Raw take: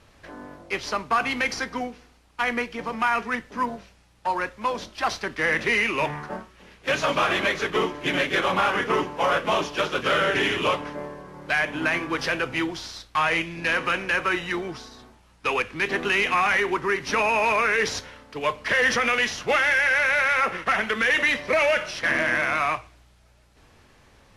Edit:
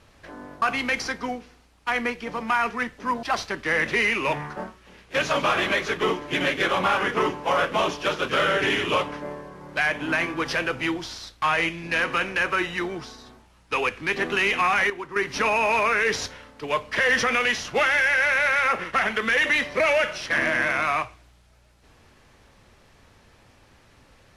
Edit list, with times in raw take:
0.62–1.14 cut
3.75–4.96 cut
16.63–16.89 gain -9.5 dB

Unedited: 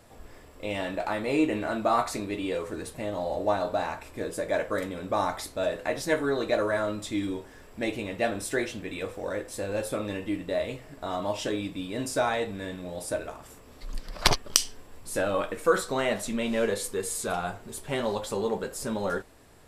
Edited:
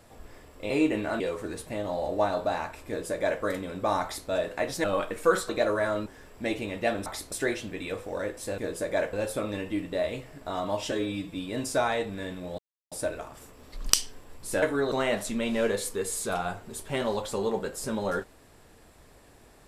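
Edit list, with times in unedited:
0.7–1.28 cut
1.78–2.48 cut
4.15–4.7 copy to 9.69
5.31–5.57 copy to 8.43
6.12–6.41 swap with 15.25–15.9
6.98–7.43 cut
11.47–11.76 stretch 1.5×
13 insert silence 0.33 s
13.98–14.52 cut

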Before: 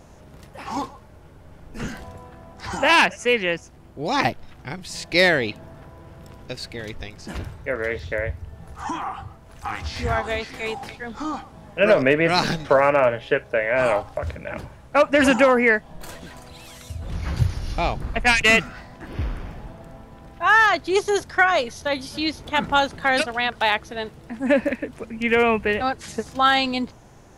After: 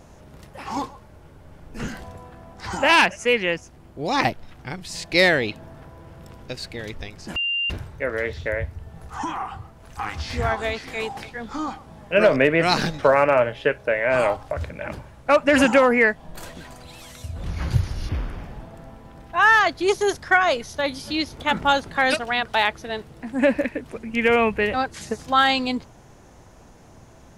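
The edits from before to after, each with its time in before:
7.36 add tone 2790 Hz -21 dBFS 0.34 s
17.75–19.16 cut

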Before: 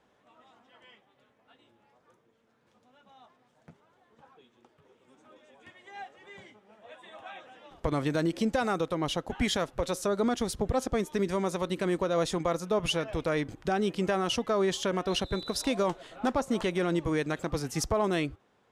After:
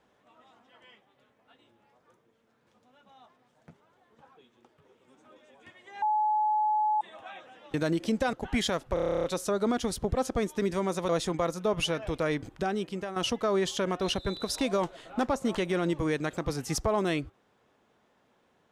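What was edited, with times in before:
6.02–7.01 bleep 853 Hz -23 dBFS
7.74–8.07 cut
8.66–9.2 cut
9.81 stutter 0.03 s, 11 plays
11.66–12.15 cut
13.56–14.22 fade out, to -11 dB

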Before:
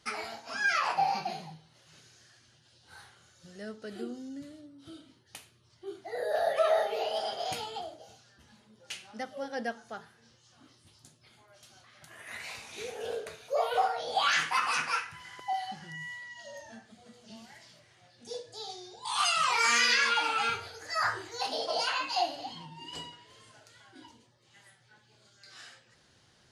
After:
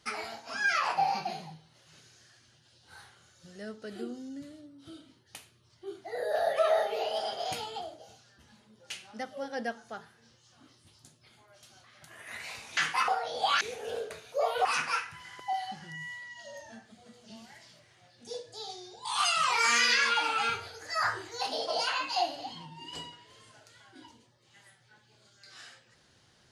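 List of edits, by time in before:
12.77–13.81 swap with 14.34–14.65

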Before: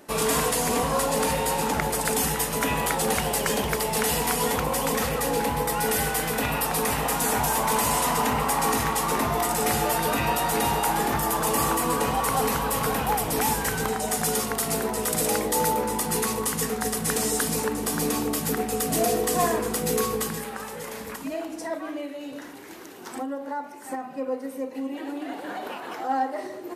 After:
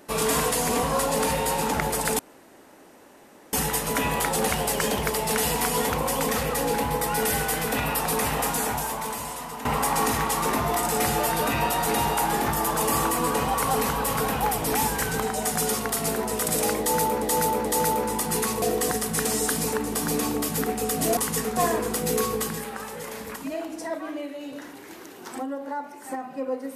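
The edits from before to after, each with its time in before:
2.19 insert room tone 1.34 s
7.1–8.31 fade out quadratic, to -12.5 dB
15.45–15.88 loop, 3 plays
16.42–16.82 swap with 19.08–19.37

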